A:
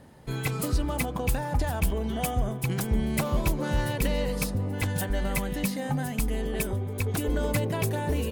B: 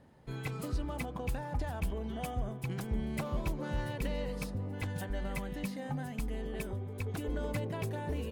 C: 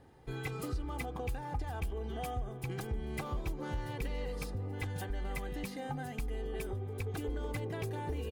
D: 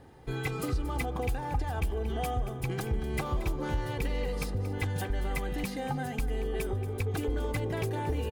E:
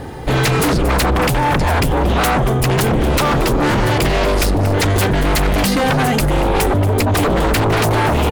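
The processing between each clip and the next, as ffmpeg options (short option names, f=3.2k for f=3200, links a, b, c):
-af "highshelf=f=6k:g=-10,volume=-8.5dB"
-af "aecho=1:1:2.5:0.52,acompressor=threshold=-36dB:ratio=2.5,volume=1dB"
-af "aecho=1:1:230:0.2,volume=6dB"
-af "aeval=exprs='0.112*sin(PI/2*4.47*val(0)/0.112)':c=same,volume=7.5dB"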